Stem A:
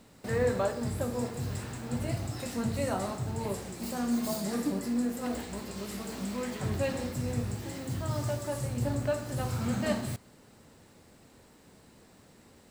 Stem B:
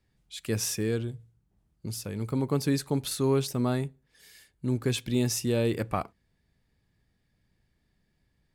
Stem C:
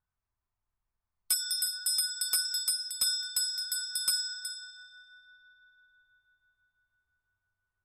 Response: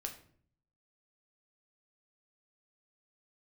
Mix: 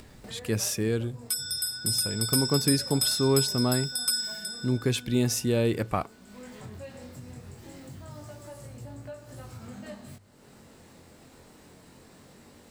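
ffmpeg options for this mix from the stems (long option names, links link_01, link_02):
-filter_complex "[0:a]bandreject=frequency=50:width_type=h:width=6,bandreject=frequency=100:width_type=h:width=6,flanger=delay=18.5:depth=5.2:speed=0.22,volume=-13dB[link_01];[1:a]volume=1.5dB[link_02];[2:a]dynaudnorm=framelen=150:gausssize=17:maxgain=11dB,volume=-9dB[link_03];[link_01][link_02][link_03]amix=inputs=3:normalize=0,acompressor=mode=upward:threshold=-35dB:ratio=2.5"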